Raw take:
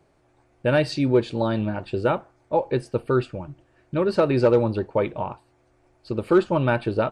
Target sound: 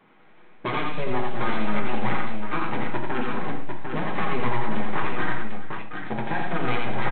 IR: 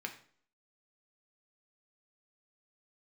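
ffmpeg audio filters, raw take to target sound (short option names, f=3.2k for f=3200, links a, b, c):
-filter_complex "[0:a]highpass=f=62:p=1,aecho=1:1:6.4:0.92,acompressor=threshold=-28dB:ratio=6,aresample=8000,aeval=exprs='abs(val(0))':c=same,aresample=44100,aecho=1:1:86|190|403|749:0.668|0.237|0.15|0.531[a];[1:a]atrim=start_sample=2205[b];[a][b]afir=irnorm=-1:irlink=0,volume=7.5dB"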